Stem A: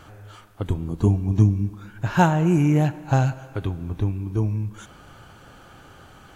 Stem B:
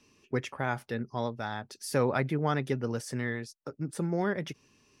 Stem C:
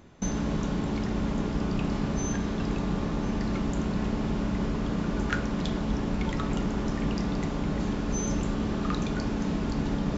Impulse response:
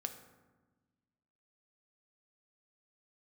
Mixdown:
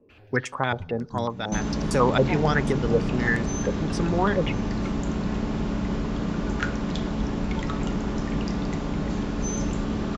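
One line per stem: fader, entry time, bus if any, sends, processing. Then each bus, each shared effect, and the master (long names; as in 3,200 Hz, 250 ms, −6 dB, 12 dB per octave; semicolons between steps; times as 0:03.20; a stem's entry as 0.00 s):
−3.5 dB, 0.10 s, no send, high shelf with overshoot 7,000 Hz −10 dB, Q 3; frequency shifter mixed with the dry sound +0.53 Hz; automatic ducking −9 dB, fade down 0.90 s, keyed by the second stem
+3.0 dB, 0.00 s, send −17.5 dB, low-pass on a step sequencer 11 Hz 510–7,900 Hz
+1.5 dB, 1.30 s, no send, no processing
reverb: on, RT60 1.2 s, pre-delay 3 ms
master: no processing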